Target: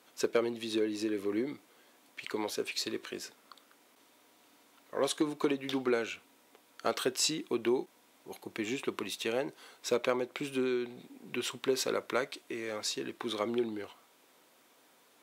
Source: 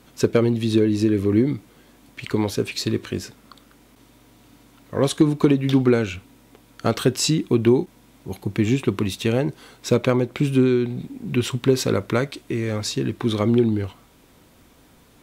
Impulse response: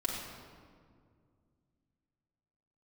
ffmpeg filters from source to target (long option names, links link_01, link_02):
-af "highpass=450,volume=-7dB"